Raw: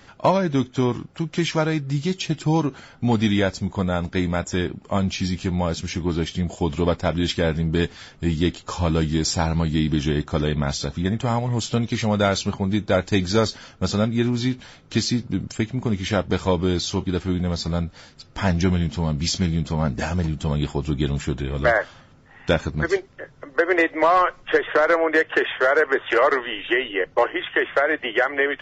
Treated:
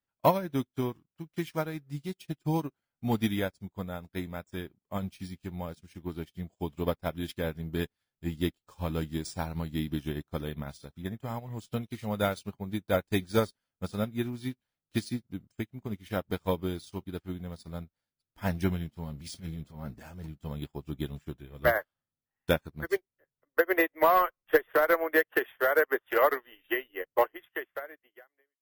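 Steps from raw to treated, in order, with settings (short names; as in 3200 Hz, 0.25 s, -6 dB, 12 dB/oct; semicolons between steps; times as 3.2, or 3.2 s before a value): ending faded out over 1.36 s; careless resampling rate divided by 3×, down none, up hold; 19.04–20.23 transient shaper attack -11 dB, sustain +4 dB; upward expander 2.5:1, over -41 dBFS; gain -2.5 dB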